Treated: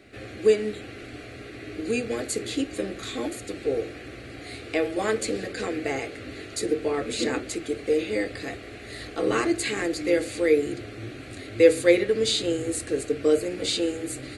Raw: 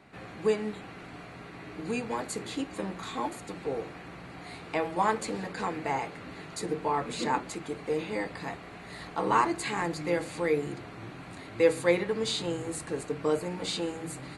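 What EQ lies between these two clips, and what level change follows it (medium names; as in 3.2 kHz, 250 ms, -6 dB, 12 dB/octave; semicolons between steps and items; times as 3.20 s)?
peaking EQ 110 Hz +7.5 dB 1.1 oct; static phaser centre 390 Hz, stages 4; +7.5 dB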